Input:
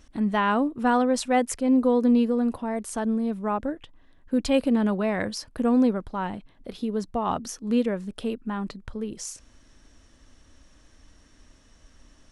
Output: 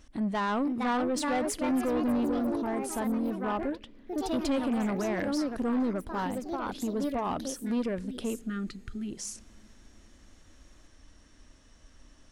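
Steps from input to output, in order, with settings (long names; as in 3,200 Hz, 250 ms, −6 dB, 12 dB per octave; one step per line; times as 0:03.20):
healed spectral selection 0:08.44–0:09.09, 430–1,200 Hz before
delay with pitch and tempo change per echo 517 ms, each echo +3 semitones, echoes 3, each echo −6 dB
in parallel at 0 dB: brickwall limiter −18.5 dBFS, peak gain reduction 9.5 dB
on the sum: soft clipping −15.5 dBFS, distortion −13 dB
on a send at −21 dB: Chebyshev band-stop filter 480–1,900 Hz + convolution reverb RT60 2.8 s, pre-delay 3 ms
on the sum: level −8 dB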